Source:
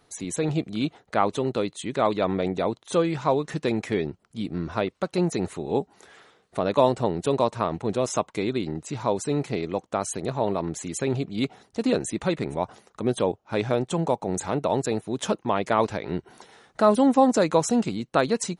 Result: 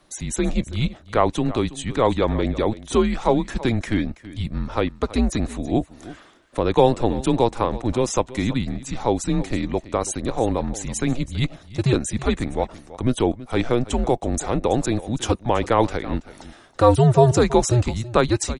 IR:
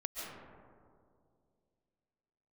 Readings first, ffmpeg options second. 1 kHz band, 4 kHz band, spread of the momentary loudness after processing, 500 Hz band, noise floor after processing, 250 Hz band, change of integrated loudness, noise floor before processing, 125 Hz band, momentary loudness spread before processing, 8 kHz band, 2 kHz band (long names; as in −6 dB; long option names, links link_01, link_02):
+2.5 dB, +4.0 dB, 9 LU, +2.5 dB, −49 dBFS, +3.5 dB, +3.5 dB, −64 dBFS, +8.5 dB, 9 LU, +4.0 dB, +3.0 dB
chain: -af "aecho=1:1:328:0.141,afreqshift=-120,volume=4dB"